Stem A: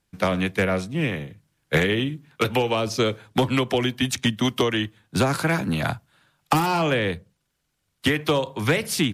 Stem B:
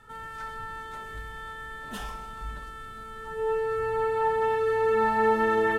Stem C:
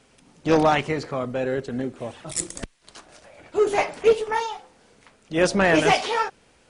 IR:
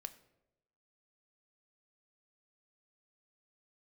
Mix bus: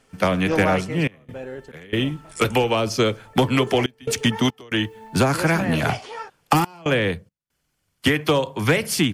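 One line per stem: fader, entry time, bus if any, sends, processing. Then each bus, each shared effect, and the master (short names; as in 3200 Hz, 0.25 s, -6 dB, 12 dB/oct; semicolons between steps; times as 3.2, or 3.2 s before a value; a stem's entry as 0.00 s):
+2.5 dB, 0.00 s, no send, dry
-9.5 dB, 0.00 s, no send, limiter -22.5 dBFS, peak gain reduction 8.5 dB; short-mantissa float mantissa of 4-bit; step phaser 2.1 Hz 280–1900 Hz
-2.5 dB, 0.00 s, no send, auto duck -8 dB, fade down 1.90 s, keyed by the first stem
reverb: off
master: notch 3800 Hz, Q 9.8; step gate "xxxxx.xx.xxxx" 70 bpm -24 dB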